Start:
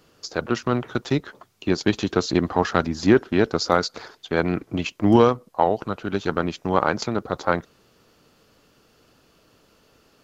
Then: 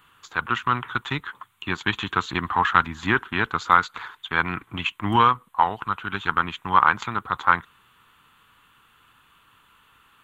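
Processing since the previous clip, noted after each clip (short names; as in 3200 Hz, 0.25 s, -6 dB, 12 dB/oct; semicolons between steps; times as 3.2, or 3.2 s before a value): EQ curve 110 Hz 0 dB, 610 Hz -12 dB, 1000 Hz +12 dB, 2400 Hz +8 dB, 3500 Hz +9 dB, 5100 Hz -18 dB, 8200 Hz +5 dB; gain -3.5 dB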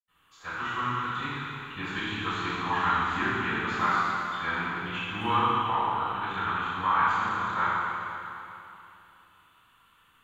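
reverb RT60 2.9 s, pre-delay 77 ms; gain +6.5 dB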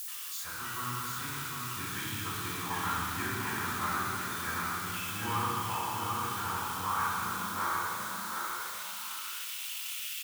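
switching spikes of -22.5 dBFS; high-pass sweep 88 Hz -> 2500 Hz, 7.04–8.9; on a send: feedback echo 0.744 s, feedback 19%, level -4.5 dB; on the sum: gain -8.5 dB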